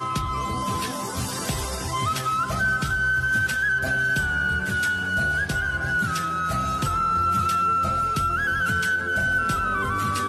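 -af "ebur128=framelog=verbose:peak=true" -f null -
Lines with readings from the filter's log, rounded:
Integrated loudness:
  I:         -23.1 LUFS
  Threshold: -33.1 LUFS
Loudness range:
  LRA:         1.9 LU
  Threshold: -42.8 LUFS
  LRA low:   -24.0 LUFS
  LRA high:  -22.1 LUFS
True peak:
  Peak:      -12.7 dBFS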